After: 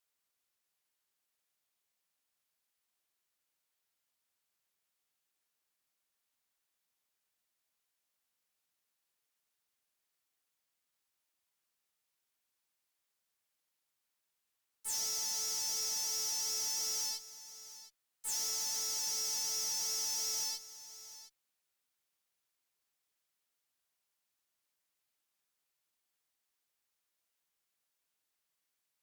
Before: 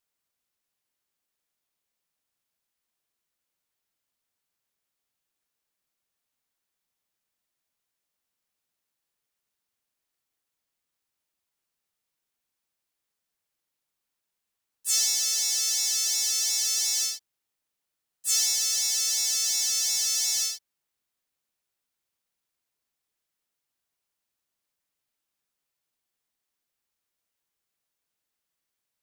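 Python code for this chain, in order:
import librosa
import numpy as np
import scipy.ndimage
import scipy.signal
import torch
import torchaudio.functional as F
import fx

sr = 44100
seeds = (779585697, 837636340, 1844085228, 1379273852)

y = fx.low_shelf(x, sr, hz=450.0, db=-6.0)
y = fx.tube_stage(y, sr, drive_db=33.0, bias=0.3)
y = y + 10.0 ** (-15.0 / 20.0) * np.pad(y, (int(711 * sr / 1000.0), 0))[:len(y)]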